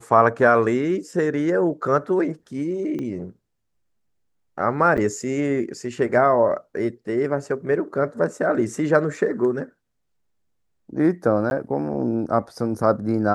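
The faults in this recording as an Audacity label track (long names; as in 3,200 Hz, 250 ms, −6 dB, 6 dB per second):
2.990000	2.990000	click −20 dBFS
4.970000	4.980000	drop-out 7.8 ms
11.500000	11.510000	drop-out 11 ms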